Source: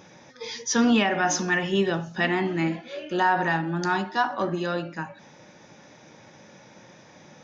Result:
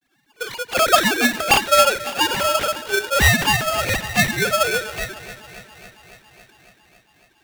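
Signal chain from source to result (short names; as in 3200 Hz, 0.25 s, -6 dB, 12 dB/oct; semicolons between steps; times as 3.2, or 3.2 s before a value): sine-wave speech; low shelf 230 Hz +10 dB; in parallel at -2.5 dB: compressor, threshold -35 dBFS, peak gain reduction 20.5 dB; on the sum: expander -39 dBFS; companded quantiser 8-bit; on a send: thinning echo 0.277 s, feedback 77%, high-pass 440 Hz, level -14 dB; on the sum: polarity switched at an audio rate 970 Hz; gain +3 dB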